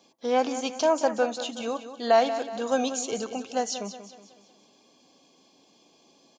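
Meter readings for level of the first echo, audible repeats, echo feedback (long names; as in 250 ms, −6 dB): −11.5 dB, 4, 45%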